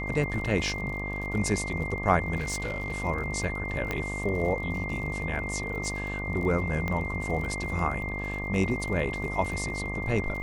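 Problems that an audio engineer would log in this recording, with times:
buzz 50 Hz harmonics 24 -35 dBFS
crackle 49 per s -36 dBFS
whine 2.1 kHz -34 dBFS
2.37–3.04 s: clipped -27 dBFS
3.91 s: pop -15 dBFS
6.88 s: pop -18 dBFS

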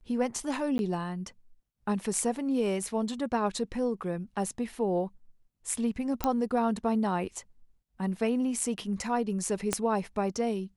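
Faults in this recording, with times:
0.78–0.79 s: dropout 11 ms
6.24 s: pop -12 dBFS
9.73 s: pop -11 dBFS

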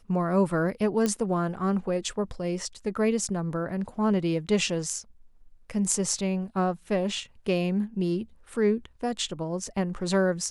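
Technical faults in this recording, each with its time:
1.06 s: pop -13 dBFS

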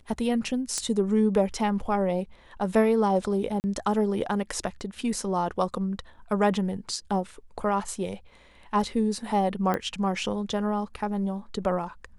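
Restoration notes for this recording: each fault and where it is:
0.78 s: pop -15 dBFS
3.60–3.64 s: dropout 39 ms
9.74 s: pop -15 dBFS

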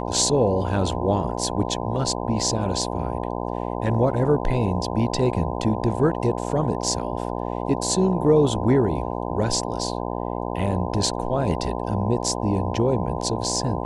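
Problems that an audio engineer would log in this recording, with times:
buzz 60 Hz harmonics 17 -28 dBFS

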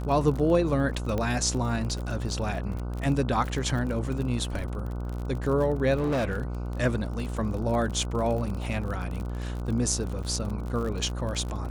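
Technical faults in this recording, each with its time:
buzz 60 Hz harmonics 25 -32 dBFS
crackle 37 per s -32 dBFS
1.18 s: pop -17 dBFS
5.96–6.55 s: clipped -23 dBFS
10.23–10.24 s: dropout 6.3 ms

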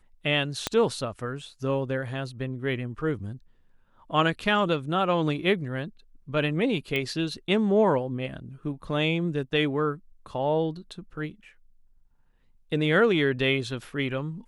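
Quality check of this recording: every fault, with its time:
0.67 s: pop -10 dBFS
6.96 s: pop -16 dBFS

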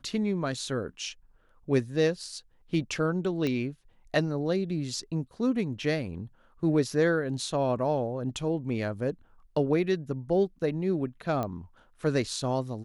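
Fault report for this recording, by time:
3.47 s: pop -18 dBFS
11.43 s: pop -19 dBFS

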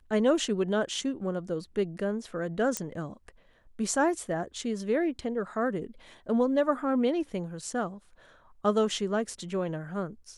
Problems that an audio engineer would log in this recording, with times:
2.77 s: pop -13 dBFS

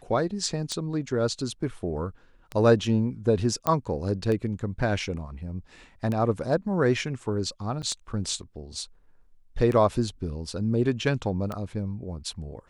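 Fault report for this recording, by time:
tick 33 1/3 rpm -18 dBFS
3.67 s: pop -10 dBFS
7.82–7.83 s: dropout 7.6 ms

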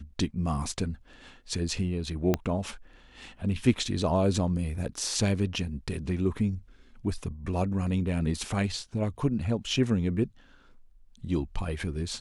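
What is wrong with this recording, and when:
2.34 s: pop -11 dBFS

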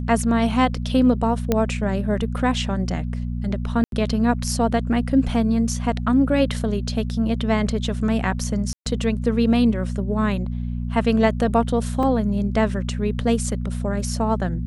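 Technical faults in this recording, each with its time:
hum 60 Hz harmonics 4 -26 dBFS
1.52 s: pop -6 dBFS
3.84–3.92 s: dropout 82 ms
8.73–8.86 s: dropout 127 ms
12.03 s: dropout 2.5 ms

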